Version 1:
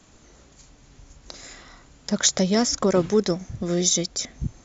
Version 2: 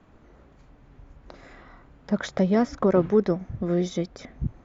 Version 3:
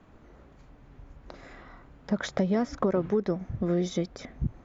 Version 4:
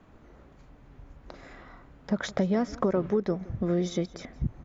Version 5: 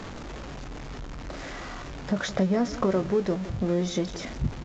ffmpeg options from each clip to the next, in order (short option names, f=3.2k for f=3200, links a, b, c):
-af "lowpass=1.7k"
-af "acompressor=threshold=-22dB:ratio=6"
-af "aecho=1:1:170:0.0944"
-filter_complex "[0:a]aeval=exprs='val(0)+0.5*0.02*sgn(val(0))':c=same,asplit=2[a][b];[b]adelay=21,volume=-10.5dB[c];[a][c]amix=inputs=2:normalize=0,aresample=16000,aresample=44100"